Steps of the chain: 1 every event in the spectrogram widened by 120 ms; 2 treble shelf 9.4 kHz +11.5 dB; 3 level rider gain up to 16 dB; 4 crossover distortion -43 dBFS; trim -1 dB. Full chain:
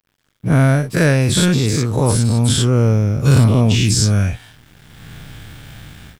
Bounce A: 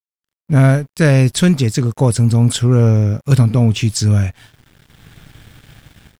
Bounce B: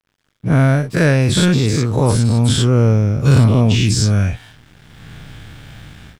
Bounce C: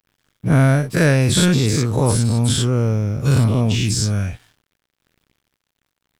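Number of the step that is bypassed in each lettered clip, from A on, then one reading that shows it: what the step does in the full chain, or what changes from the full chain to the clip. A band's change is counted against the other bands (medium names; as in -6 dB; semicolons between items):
1, 8 kHz band -3.5 dB; 2, 8 kHz band -4.0 dB; 3, crest factor change +2.0 dB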